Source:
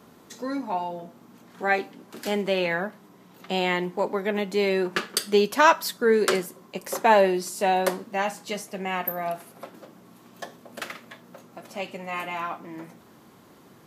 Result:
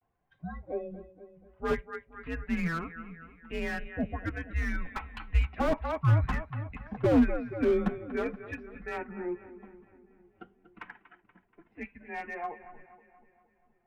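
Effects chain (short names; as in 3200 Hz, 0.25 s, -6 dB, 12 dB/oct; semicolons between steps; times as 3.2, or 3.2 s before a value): per-bin expansion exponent 1.5; 5.53–6.84 upward compressor, threshold -34 dBFS; vibrato 0.34 Hz 43 cents; split-band echo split 610 Hz, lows 0.467 s, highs 0.239 s, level -14.5 dB; mistuned SSB -340 Hz 400–2700 Hz; slew limiter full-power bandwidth 38 Hz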